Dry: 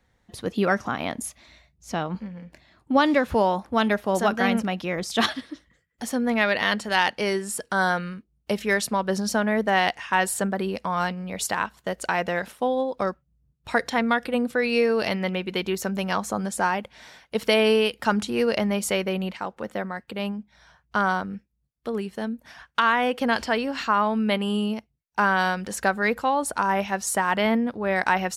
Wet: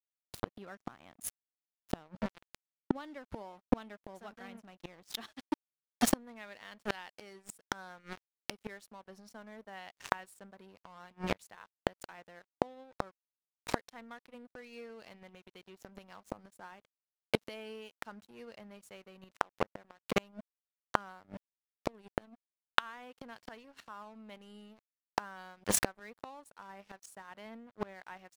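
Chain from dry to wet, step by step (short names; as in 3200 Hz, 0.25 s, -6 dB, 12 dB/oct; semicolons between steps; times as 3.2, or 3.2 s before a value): crossover distortion -33 dBFS; flipped gate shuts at -23 dBFS, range -36 dB; gain +10.5 dB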